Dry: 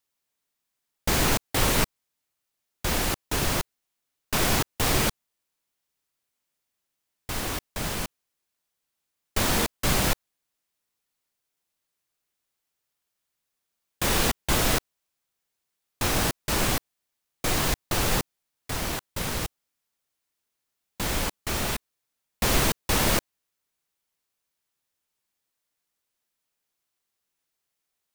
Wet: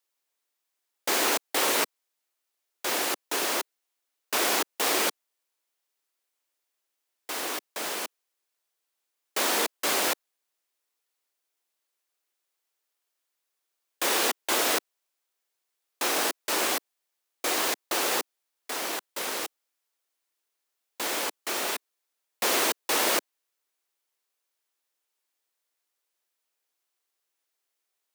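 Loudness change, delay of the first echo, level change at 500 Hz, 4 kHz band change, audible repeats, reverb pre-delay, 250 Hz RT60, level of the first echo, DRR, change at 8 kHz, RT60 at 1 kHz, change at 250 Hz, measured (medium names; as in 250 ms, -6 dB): -1.0 dB, no echo, -0.5 dB, 0.0 dB, no echo, no reverb, no reverb, no echo, no reverb, 0.0 dB, no reverb, -6.5 dB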